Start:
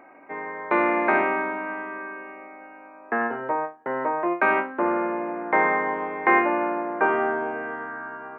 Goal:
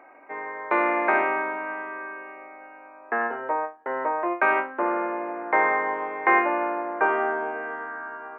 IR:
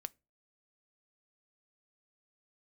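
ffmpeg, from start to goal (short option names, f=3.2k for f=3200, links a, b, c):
-af "bass=f=250:g=-15,treble=f=4k:g=-6"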